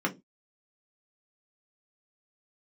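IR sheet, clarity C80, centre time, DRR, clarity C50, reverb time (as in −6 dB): 27.5 dB, 9 ms, −0.5 dB, 19.0 dB, 0.20 s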